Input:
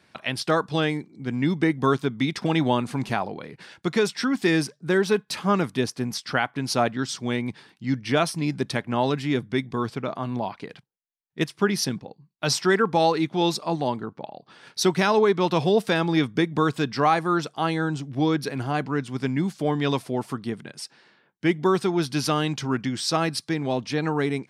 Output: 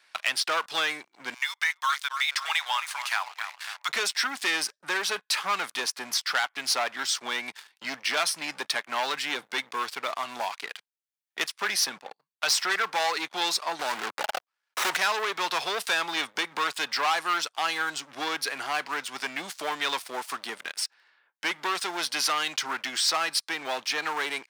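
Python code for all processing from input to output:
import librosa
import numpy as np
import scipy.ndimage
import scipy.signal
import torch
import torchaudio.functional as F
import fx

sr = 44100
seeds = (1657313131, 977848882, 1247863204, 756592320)

y = fx.chain(x, sr, fx.highpass(hz=950.0, slope=24),
    fx.echo_bbd(ms=269, stages=4096, feedback_pct=51, wet_db=-12), at=(1.34, 3.89))
y = fx.chain(y, sr, fx.level_steps(step_db=21),
    fx.leveller(passes=5),
    fx.running_max(window=9), at=(13.79, 14.97))
y = fx.leveller(y, sr, passes=3)
y = scipy.signal.sosfilt(scipy.signal.butter(2, 1100.0, 'highpass', fs=sr, output='sos'), y)
y = fx.band_squash(y, sr, depth_pct=40)
y = F.gain(torch.from_numpy(y), -5.0).numpy()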